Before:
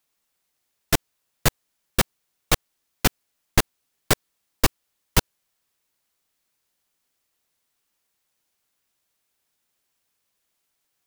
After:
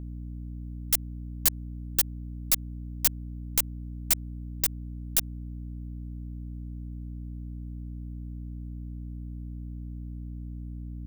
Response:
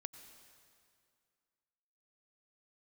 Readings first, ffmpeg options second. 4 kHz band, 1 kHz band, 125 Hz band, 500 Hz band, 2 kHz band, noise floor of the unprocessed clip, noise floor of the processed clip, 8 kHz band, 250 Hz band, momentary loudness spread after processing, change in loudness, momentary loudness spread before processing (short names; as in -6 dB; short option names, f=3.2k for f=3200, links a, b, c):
-7.5 dB, -17.5 dB, -3.0 dB, -19.5 dB, -13.5 dB, -76 dBFS, -38 dBFS, -1.0 dB, -5.5 dB, 14 LU, -6.0 dB, 1 LU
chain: -af "aeval=exprs='0.841*(cos(1*acos(clip(val(0)/0.841,-1,1)))-cos(1*PI/2))+0.335*(cos(3*acos(clip(val(0)/0.841,-1,1)))-cos(3*PI/2))+0.119*(cos(4*acos(clip(val(0)/0.841,-1,1)))-cos(4*PI/2))+0.0944*(cos(8*acos(clip(val(0)/0.841,-1,1)))-cos(8*PI/2))':c=same,crystalizer=i=5.5:c=0,aeval=exprs='val(0)+0.0631*(sin(2*PI*60*n/s)+sin(2*PI*2*60*n/s)/2+sin(2*PI*3*60*n/s)/3+sin(2*PI*4*60*n/s)/4+sin(2*PI*5*60*n/s)/5)':c=same,alimiter=level_in=-4.5dB:limit=-1dB:release=50:level=0:latency=1,volume=-7.5dB"